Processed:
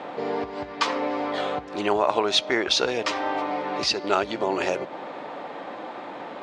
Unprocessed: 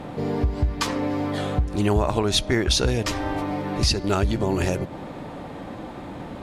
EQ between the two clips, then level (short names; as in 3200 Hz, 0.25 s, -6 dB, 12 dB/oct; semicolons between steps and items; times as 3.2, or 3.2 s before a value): HPF 510 Hz 12 dB/oct; dynamic EQ 1700 Hz, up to -3 dB, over -46 dBFS, Q 5.2; air absorption 140 m; +5.0 dB